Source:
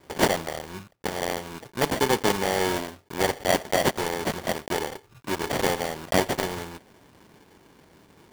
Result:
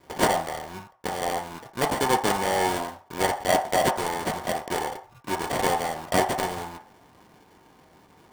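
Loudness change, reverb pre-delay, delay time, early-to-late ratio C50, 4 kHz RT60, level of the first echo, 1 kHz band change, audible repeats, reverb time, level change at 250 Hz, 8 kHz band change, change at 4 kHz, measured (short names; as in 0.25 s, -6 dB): +0.5 dB, 3 ms, none, 10.0 dB, 0.45 s, none, +4.0 dB, none, 0.45 s, -2.0 dB, 0.0 dB, -2.0 dB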